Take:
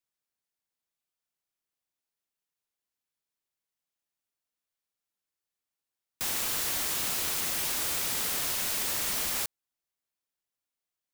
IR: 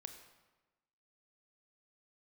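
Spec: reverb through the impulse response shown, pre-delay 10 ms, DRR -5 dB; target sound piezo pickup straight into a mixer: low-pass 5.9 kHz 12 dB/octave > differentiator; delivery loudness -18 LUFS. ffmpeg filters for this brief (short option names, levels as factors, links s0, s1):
-filter_complex "[0:a]asplit=2[s0][s1];[1:a]atrim=start_sample=2205,adelay=10[s2];[s1][s2]afir=irnorm=-1:irlink=0,volume=3.16[s3];[s0][s3]amix=inputs=2:normalize=0,lowpass=5900,aderivative,volume=5.01"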